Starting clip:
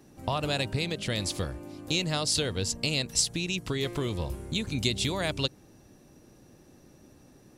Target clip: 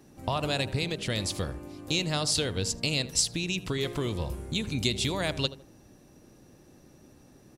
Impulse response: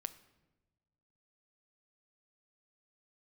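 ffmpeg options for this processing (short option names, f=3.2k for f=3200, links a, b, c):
-filter_complex "[0:a]asplit=2[a][b];[b]adelay=79,lowpass=f=1.3k:p=1,volume=-13dB,asplit=2[c][d];[d]adelay=79,lowpass=f=1.3k:p=1,volume=0.4,asplit=2[e][f];[f]adelay=79,lowpass=f=1.3k:p=1,volume=0.4,asplit=2[g][h];[h]adelay=79,lowpass=f=1.3k:p=1,volume=0.4[i];[a][c][e][g][i]amix=inputs=5:normalize=0"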